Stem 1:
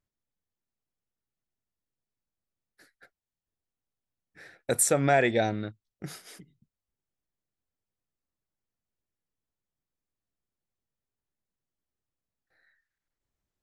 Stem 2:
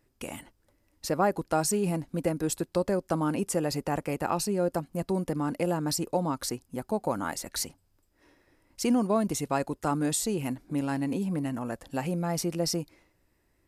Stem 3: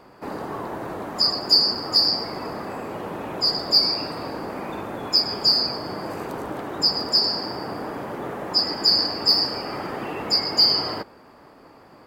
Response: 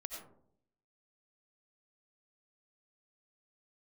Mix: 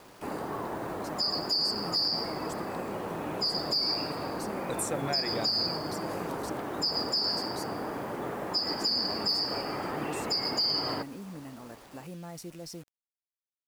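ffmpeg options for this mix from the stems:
-filter_complex "[0:a]volume=-10dB[a];[1:a]alimiter=limit=-20.5dB:level=0:latency=1,volume=-12.5dB[b];[2:a]volume=-4dB[c];[a][b][c]amix=inputs=3:normalize=0,acrusher=bits=8:mix=0:aa=0.000001,alimiter=limit=-19.5dB:level=0:latency=1:release=99"

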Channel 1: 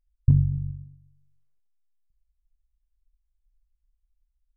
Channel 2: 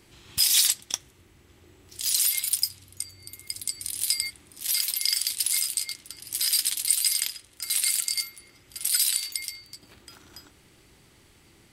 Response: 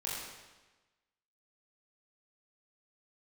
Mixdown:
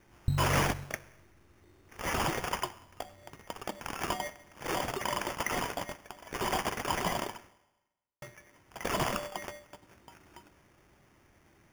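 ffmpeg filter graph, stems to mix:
-filter_complex "[0:a]acompressor=threshold=-23dB:ratio=6,volume=-3dB[a];[1:a]asoftclip=type=tanh:threshold=-14dB,volume=-7dB,asplit=3[b][c][d];[b]atrim=end=7.49,asetpts=PTS-STARTPTS,afade=t=out:st=7.486:d=0.004:c=hsin[e];[c]atrim=start=7.49:end=8.22,asetpts=PTS-STARTPTS,volume=0[f];[d]atrim=start=8.22,asetpts=PTS-STARTPTS,afade=t=in:d=0.004:c=hsin[g];[e][f][g]concat=n=3:v=0:a=1,asplit=2[h][i];[i]volume=-16dB[j];[2:a]atrim=start_sample=2205[k];[j][k]afir=irnorm=-1:irlink=0[l];[a][h][l]amix=inputs=3:normalize=0,acrusher=samples=11:mix=1:aa=0.000001"

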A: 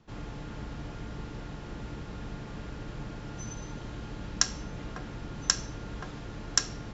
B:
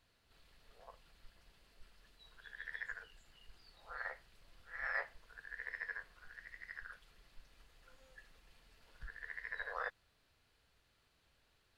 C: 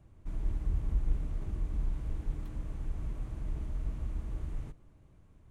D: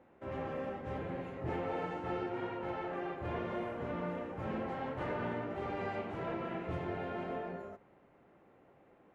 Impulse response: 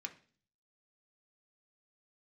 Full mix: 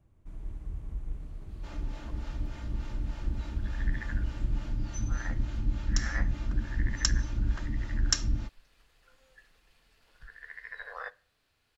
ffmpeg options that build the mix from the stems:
-filter_complex "[0:a]asubboost=boost=7:cutoff=180,aecho=1:1:3.3:0.65,acrossover=split=430[a][b];[a]aeval=exprs='val(0)*(1-0.7/2+0.7/2*cos(2*PI*3.4*n/s))':c=same[c];[b]aeval=exprs='val(0)*(1-0.7/2-0.7/2*cos(2*PI*3.4*n/s))':c=same[d];[c][d]amix=inputs=2:normalize=0,adelay=1550,volume=-1.5dB[e];[1:a]adelay=1200,volume=-1.5dB,asplit=2[f][g];[g]volume=-5.5dB[h];[2:a]volume=-6.5dB[i];[4:a]atrim=start_sample=2205[j];[h][j]afir=irnorm=-1:irlink=0[k];[e][f][i][k]amix=inputs=4:normalize=0"

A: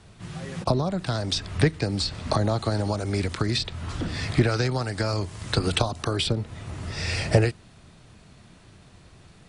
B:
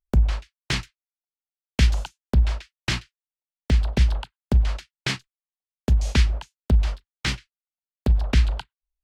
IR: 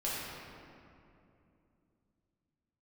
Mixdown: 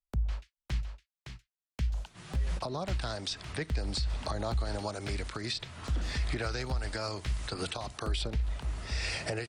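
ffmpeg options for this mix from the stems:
-filter_complex "[0:a]lowshelf=f=340:g=-10.5,adelay=1950,volume=-4.5dB[a];[1:a]acrossover=split=140[b][c];[c]acompressor=threshold=-38dB:ratio=2.5[d];[b][d]amix=inputs=2:normalize=0,volume=-9dB,asplit=2[e][f];[f]volume=-6.5dB,aecho=0:1:561:1[g];[a][e][g]amix=inputs=3:normalize=0,alimiter=limit=-23.5dB:level=0:latency=1:release=106"

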